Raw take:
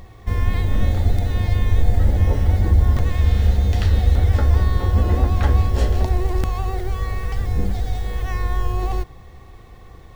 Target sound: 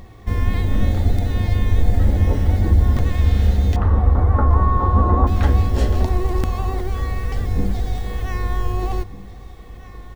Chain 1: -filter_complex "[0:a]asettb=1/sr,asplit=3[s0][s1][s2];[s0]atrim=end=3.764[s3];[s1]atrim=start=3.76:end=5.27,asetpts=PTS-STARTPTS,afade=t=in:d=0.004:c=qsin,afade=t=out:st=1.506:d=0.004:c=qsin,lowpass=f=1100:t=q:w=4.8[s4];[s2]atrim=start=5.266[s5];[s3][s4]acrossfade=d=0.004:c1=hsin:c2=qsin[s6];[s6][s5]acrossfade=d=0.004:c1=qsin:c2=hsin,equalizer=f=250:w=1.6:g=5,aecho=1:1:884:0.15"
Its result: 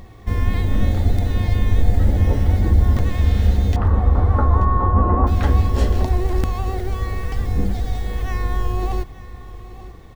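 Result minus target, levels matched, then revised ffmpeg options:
echo 660 ms early
-filter_complex "[0:a]asettb=1/sr,asplit=3[s0][s1][s2];[s0]atrim=end=3.764[s3];[s1]atrim=start=3.76:end=5.27,asetpts=PTS-STARTPTS,afade=t=in:d=0.004:c=qsin,afade=t=out:st=1.506:d=0.004:c=qsin,lowpass=f=1100:t=q:w=4.8[s4];[s2]atrim=start=5.266[s5];[s3][s4]acrossfade=d=0.004:c1=hsin:c2=qsin[s6];[s6][s5]acrossfade=d=0.004:c1=qsin:c2=hsin,equalizer=f=250:w=1.6:g=5,aecho=1:1:1544:0.15"

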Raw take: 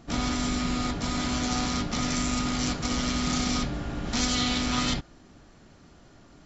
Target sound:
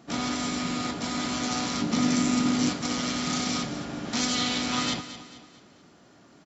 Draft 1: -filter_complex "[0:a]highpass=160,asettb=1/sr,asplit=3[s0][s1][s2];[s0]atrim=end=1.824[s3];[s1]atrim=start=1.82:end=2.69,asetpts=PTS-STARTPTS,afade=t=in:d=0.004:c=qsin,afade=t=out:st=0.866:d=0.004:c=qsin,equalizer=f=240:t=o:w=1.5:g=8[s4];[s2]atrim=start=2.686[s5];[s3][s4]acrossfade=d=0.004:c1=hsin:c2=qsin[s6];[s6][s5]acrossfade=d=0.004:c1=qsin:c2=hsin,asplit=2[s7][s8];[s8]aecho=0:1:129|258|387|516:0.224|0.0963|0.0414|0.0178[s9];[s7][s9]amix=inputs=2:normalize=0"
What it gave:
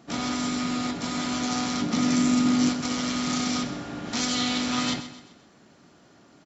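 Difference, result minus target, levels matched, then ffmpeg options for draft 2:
echo 91 ms early
-filter_complex "[0:a]highpass=160,asettb=1/sr,asplit=3[s0][s1][s2];[s0]atrim=end=1.824[s3];[s1]atrim=start=1.82:end=2.69,asetpts=PTS-STARTPTS,afade=t=in:d=0.004:c=qsin,afade=t=out:st=0.866:d=0.004:c=qsin,equalizer=f=240:t=o:w=1.5:g=8[s4];[s2]atrim=start=2.686[s5];[s3][s4]acrossfade=d=0.004:c1=hsin:c2=qsin[s6];[s6][s5]acrossfade=d=0.004:c1=qsin:c2=hsin,asplit=2[s7][s8];[s8]aecho=0:1:220|440|660|880:0.224|0.0963|0.0414|0.0178[s9];[s7][s9]amix=inputs=2:normalize=0"

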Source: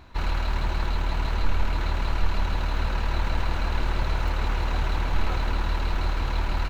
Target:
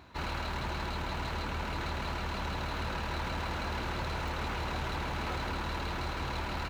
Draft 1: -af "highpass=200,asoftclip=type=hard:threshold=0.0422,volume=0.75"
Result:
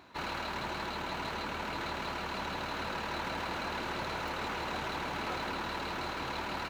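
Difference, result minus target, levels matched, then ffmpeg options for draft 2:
125 Hz band -8.5 dB
-af "highpass=88,asoftclip=type=hard:threshold=0.0422,volume=0.75"

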